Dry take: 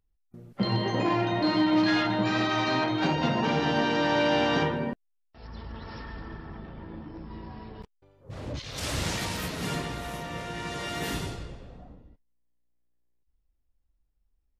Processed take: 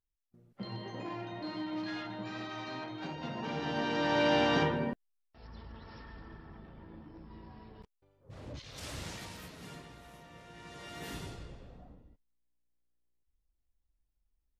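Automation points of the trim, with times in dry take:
3.17 s -15 dB
4.28 s -3 dB
4.82 s -3 dB
5.84 s -9.5 dB
8.59 s -9.5 dB
9.82 s -17.5 dB
10.40 s -17.5 dB
11.61 s -6 dB

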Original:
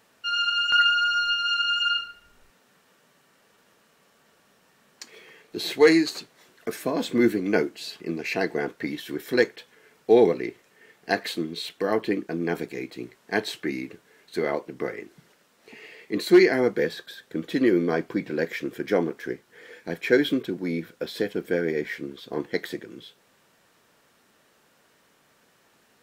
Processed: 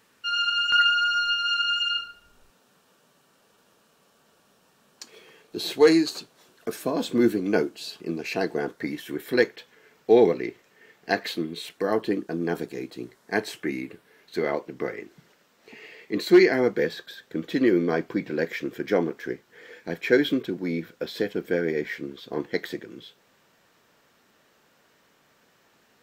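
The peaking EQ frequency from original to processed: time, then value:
peaking EQ -8 dB 0.42 oct
1.59 s 680 Hz
2.01 s 2 kHz
8.62 s 2 kHz
9.57 s 9.8 kHz
11.27 s 9.8 kHz
11.95 s 2.2 kHz
13.03 s 2.2 kHz
14.38 s 9.9 kHz

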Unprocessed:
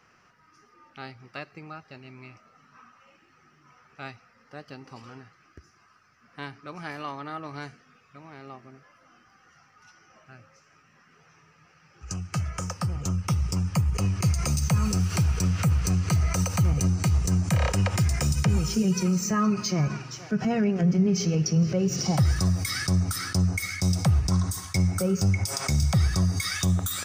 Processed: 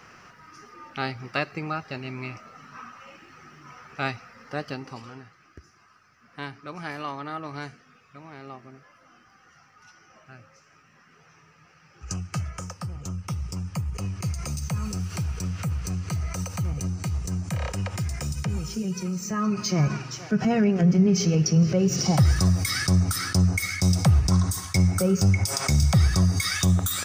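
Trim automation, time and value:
4.62 s +11 dB
5.11 s +2 dB
12.11 s +2 dB
12.78 s -5.5 dB
19.17 s -5.5 dB
19.82 s +3 dB

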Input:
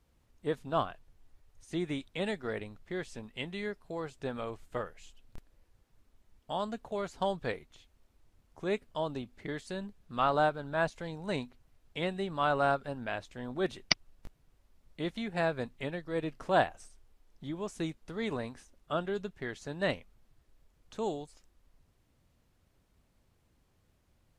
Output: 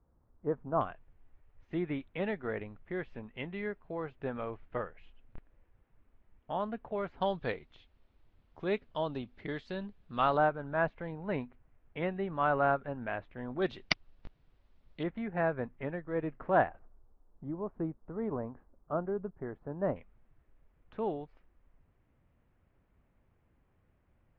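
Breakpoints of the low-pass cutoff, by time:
low-pass 24 dB/octave
1.3 kHz
from 0.81 s 2.5 kHz
from 7.21 s 3.9 kHz
from 10.37 s 2.3 kHz
from 13.62 s 4.2 kHz
from 15.03 s 2 kHz
from 16.79 s 1.2 kHz
from 19.96 s 2.4 kHz

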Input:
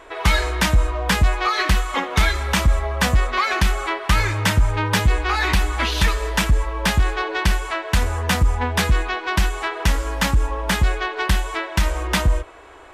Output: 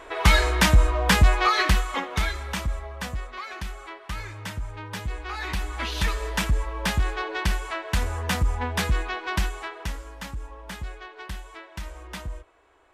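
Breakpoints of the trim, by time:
1.49 s 0 dB
2.14 s -7.5 dB
3.32 s -16 dB
4.87 s -16 dB
6.16 s -6 dB
9.38 s -6 dB
10.15 s -17 dB

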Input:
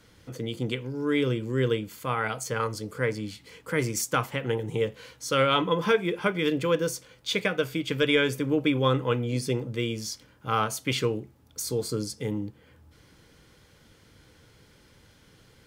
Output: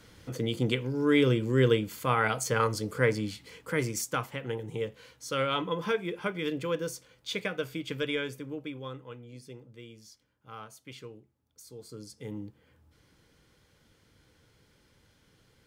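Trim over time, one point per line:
3.15 s +2 dB
4.31 s -6.5 dB
7.91 s -6.5 dB
9.06 s -19 dB
11.71 s -19 dB
12.39 s -7.5 dB

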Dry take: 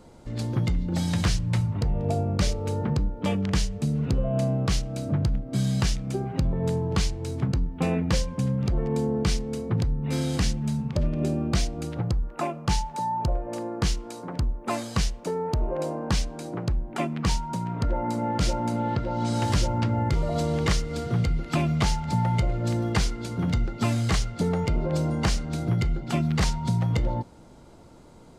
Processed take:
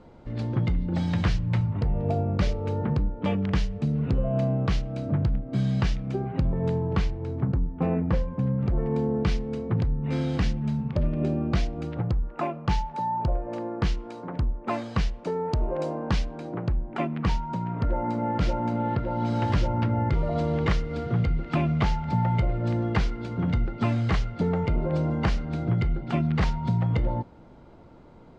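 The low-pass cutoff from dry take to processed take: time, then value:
6.81 s 2.9 kHz
7.46 s 1.4 kHz
8.24 s 1.4 kHz
9.13 s 2.9 kHz
15.11 s 2.9 kHz
15.60 s 6.2 kHz
16.38 s 2.7 kHz

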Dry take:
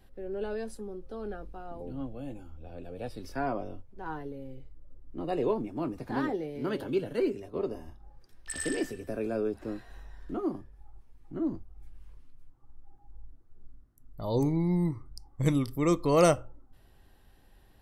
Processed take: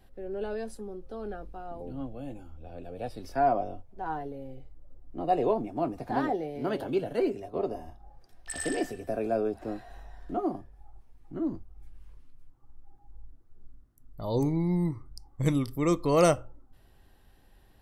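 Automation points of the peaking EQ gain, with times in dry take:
peaking EQ 710 Hz 0.42 oct
2.70 s +3.5 dB
3.57 s +12 dB
10.53 s +12 dB
11.51 s +0.5 dB

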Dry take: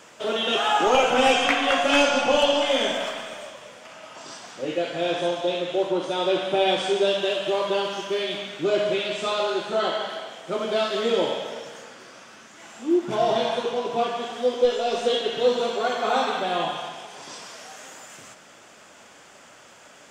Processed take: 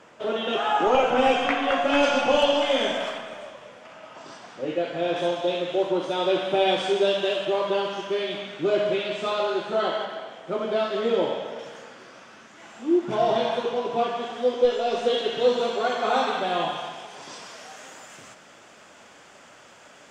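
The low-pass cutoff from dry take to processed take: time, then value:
low-pass 6 dB/octave
1.6 kHz
from 2.03 s 3.9 kHz
from 3.18 s 2.1 kHz
from 5.16 s 5.1 kHz
from 7.45 s 2.9 kHz
from 10.05 s 1.8 kHz
from 11.59 s 3.5 kHz
from 15.18 s 6 kHz

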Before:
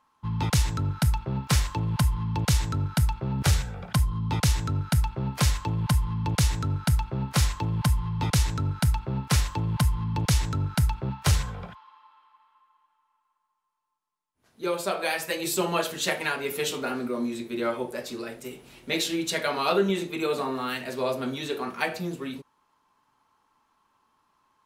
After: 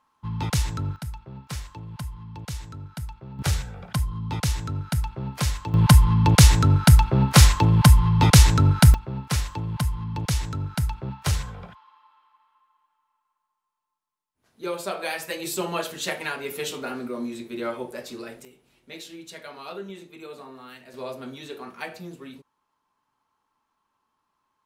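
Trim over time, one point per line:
-1 dB
from 0.96 s -11 dB
from 3.39 s -2 dB
from 5.74 s +10 dB
from 8.94 s -2 dB
from 18.45 s -13.5 dB
from 20.94 s -7 dB

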